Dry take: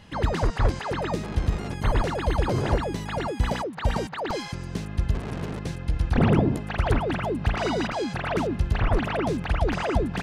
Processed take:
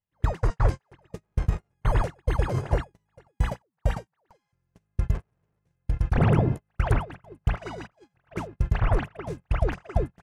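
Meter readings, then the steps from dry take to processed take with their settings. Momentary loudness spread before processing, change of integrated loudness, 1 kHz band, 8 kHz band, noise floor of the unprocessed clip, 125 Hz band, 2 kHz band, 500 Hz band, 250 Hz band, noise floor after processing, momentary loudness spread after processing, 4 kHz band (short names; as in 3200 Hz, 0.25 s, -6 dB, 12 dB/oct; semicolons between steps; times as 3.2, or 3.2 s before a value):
6 LU, -1.5 dB, -5.5 dB, n/a, -36 dBFS, -0.5 dB, -6.0 dB, -5.5 dB, -6.5 dB, -79 dBFS, 15 LU, -11.5 dB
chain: gate -23 dBFS, range -42 dB; graphic EQ 125/250/4000 Hz +4/-8/-8 dB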